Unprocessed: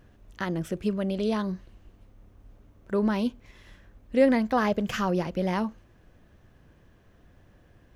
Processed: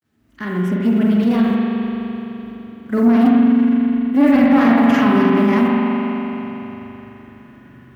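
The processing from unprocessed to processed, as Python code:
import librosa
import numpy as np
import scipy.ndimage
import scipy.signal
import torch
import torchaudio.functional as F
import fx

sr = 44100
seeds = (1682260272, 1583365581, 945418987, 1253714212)

p1 = fx.fade_in_head(x, sr, length_s=0.9)
p2 = fx.graphic_eq_10(p1, sr, hz=(250, 500, 2000, 4000, 8000), db=(10, -6, 5, -3, -5))
p3 = fx.quant_companded(p2, sr, bits=8)
p4 = fx.rev_spring(p3, sr, rt60_s=3.5, pass_ms=(42,), chirp_ms=75, drr_db=-3.5)
p5 = 10.0 ** (-14.0 / 20.0) * np.tanh(p4 / 10.0 ** (-14.0 / 20.0))
p6 = scipy.signal.sosfilt(scipy.signal.butter(2, 86.0, 'highpass', fs=sr, output='sos'), p5)
p7 = p6 + fx.echo_bbd(p6, sr, ms=67, stages=2048, feedback_pct=73, wet_db=-11, dry=0)
p8 = fx.pitch_keep_formants(p7, sr, semitones=1.5)
y = p8 * 10.0 ** (6.5 / 20.0)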